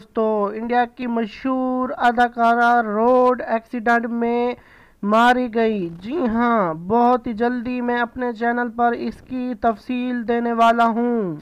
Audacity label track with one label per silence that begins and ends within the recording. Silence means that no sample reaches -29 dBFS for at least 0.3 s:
4.540000	5.030000	silence